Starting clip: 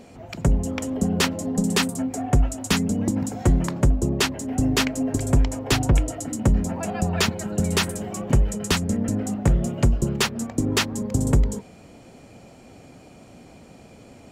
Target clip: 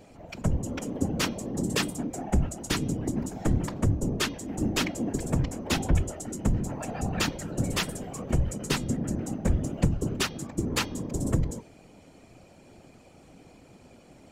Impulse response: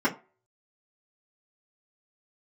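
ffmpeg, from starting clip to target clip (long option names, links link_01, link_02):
-af "bandreject=frequency=409.3:width_type=h:width=4,bandreject=frequency=818.6:width_type=h:width=4,bandreject=frequency=1227.9:width_type=h:width=4,bandreject=frequency=1637.2:width_type=h:width=4,bandreject=frequency=2046.5:width_type=h:width=4,bandreject=frequency=2455.8:width_type=h:width=4,bandreject=frequency=2865.1:width_type=h:width=4,bandreject=frequency=3274.4:width_type=h:width=4,bandreject=frequency=3683.7:width_type=h:width=4,bandreject=frequency=4093:width_type=h:width=4,bandreject=frequency=4502.3:width_type=h:width=4,bandreject=frequency=4911.6:width_type=h:width=4,bandreject=frequency=5320.9:width_type=h:width=4,bandreject=frequency=5730.2:width_type=h:width=4,bandreject=frequency=6139.5:width_type=h:width=4,afftfilt=real='hypot(re,im)*cos(2*PI*random(0))':imag='hypot(re,im)*sin(2*PI*random(1))':win_size=512:overlap=0.75"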